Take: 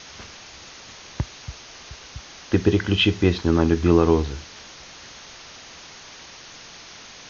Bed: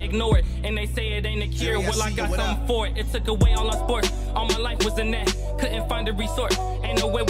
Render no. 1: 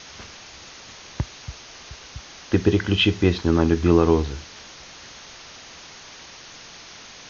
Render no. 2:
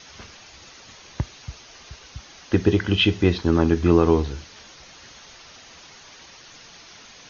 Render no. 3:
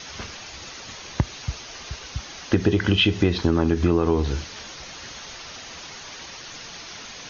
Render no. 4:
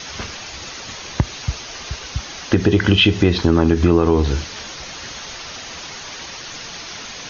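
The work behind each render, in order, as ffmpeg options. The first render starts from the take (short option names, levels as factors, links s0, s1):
-af anull
-af "afftdn=nr=6:nf=-43"
-filter_complex "[0:a]asplit=2[s0][s1];[s1]alimiter=limit=0.2:level=0:latency=1:release=84,volume=1.26[s2];[s0][s2]amix=inputs=2:normalize=0,acompressor=threshold=0.178:ratio=6"
-af "volume=2,alimiter=limit=0.708:level=0:latency=1"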